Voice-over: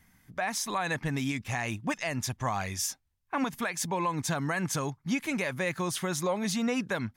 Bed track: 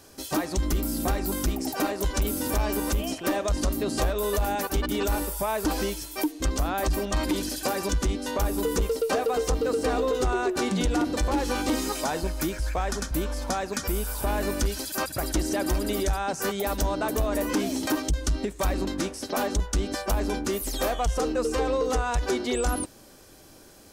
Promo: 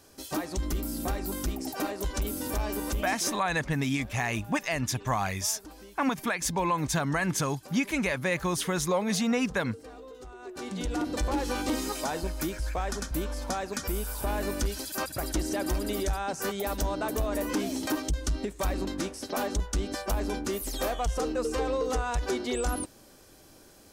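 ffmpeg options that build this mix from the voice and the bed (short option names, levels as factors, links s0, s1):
-filter_complex "[0:a]adelay=2650,volume=1.33[s0];[1:a]volume=4.22,afade=t=out:st=3.17:d=0.26:silence=0.158489,afade=t=in:st=10.38:d=0.82:silence=0.133352[s1];[s0][s1]amix=inputs=2:normalize=0"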